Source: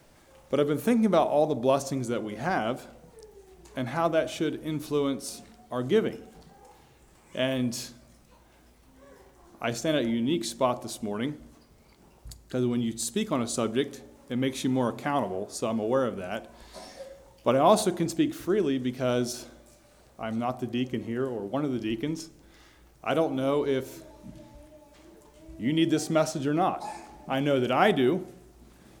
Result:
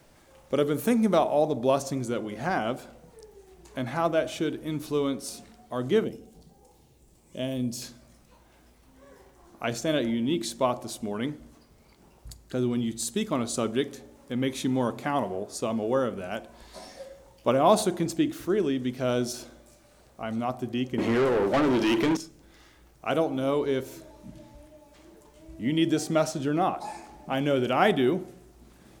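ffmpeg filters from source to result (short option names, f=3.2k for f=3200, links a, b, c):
-filter_complex "[0:a]asettb=1/sr,asplit=3[a][b][c];[a]atrim=end=0.584[d];[b]atrim=start=0.58:end=1.19,asetpts=PTS-STARTPTS,afade=t=in:d=0.004:c=qsin,afade=t=out:st=0.606:d=0.004:c=qsin,highshelf=f=5.4k:g=5[e];[c]atrim=start=1.186[f];[d][e]acrossfade=d=0.004:c1=hsin:c2=qsin[g];[g][f]acrossfade=d=0.004:c1=qsin:c2=hsin,asettb=1/sr,asplit=3[h][i][j];[h]atrim=end=6.044[k];[i]atrim=start=6.04:end=7.82,asetpts=PTS-STARTPTS,afade=t=in:d=0.004:c=qsin,afade=t=out:st=1.776:d=0.004:c=qsin,equalizer=f=1.5k:w=0.66:g=-14[l];[j]atrim=start=7.816[m];[k][l]acrossfade=d=0.004:c1=hsin:c2=qsin[n];[n][m]acrossfade=d=0.004:c1=qsin:c2=hsin,asettb=1/sr,asplit=3[o][p][q];[o]atrim=end=20.984[r];[p]atrim=start=20.98:end=22.17,asetpts=PTS-STARTPTS,afade=t=in:d=0.004:c=qsin,afade=t=out:st=1.186:d=0.004:c=qsin,asplit=2[s][t];[t]highpass=f=720:p=1,volume=29dB,asoftclip=type=tanh:threshold=-15.5dB[u];[s][u]amix=inputs=2:normalize=0,lowpass=f=3k:p=1,volume=-6dB[v];[q]atrim=start=22.166[w];[r][v]acrossfade=d=0.004:c1=hsin:c2=qsin[x];[x][w]acrossfade=d=0.004:c1=qsin:c2=hsin"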